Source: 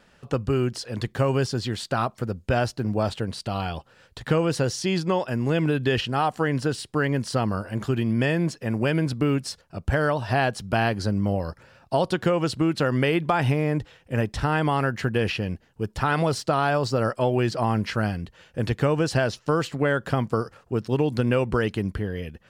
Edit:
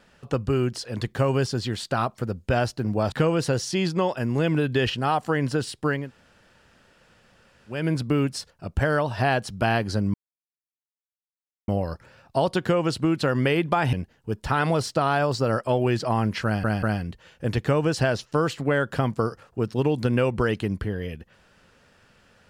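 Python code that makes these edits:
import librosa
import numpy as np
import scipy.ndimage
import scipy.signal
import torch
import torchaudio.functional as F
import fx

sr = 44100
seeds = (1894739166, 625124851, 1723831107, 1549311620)

y = fx.edit(x, sr, fx.cut(start_s=3.12, length_s=1.11),
    fx.room_tone_fill(start_s=7.11, length_s=1.78, crossfade_s=0.24),
    fx.insert_silence(at_s=11.25, length_s=1.54),
    fx.cut(start_s=13.5, length_s=1.95),
    fx.stutter(start_s=17.97, slice_s=0.19, count=3), tone=tone)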